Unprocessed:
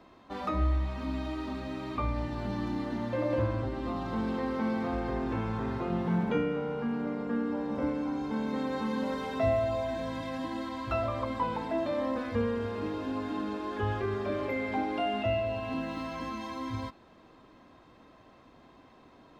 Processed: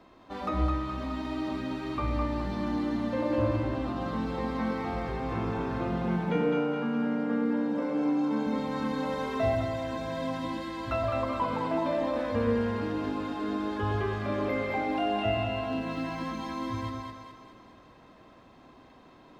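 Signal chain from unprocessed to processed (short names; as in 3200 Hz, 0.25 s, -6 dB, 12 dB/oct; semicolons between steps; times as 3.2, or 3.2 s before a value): 6.04–8.47 HPF 160 Hz 24 dB/oct; split-band echo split 620 Hz, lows 0.115 s, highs 0.21 s, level -3 dB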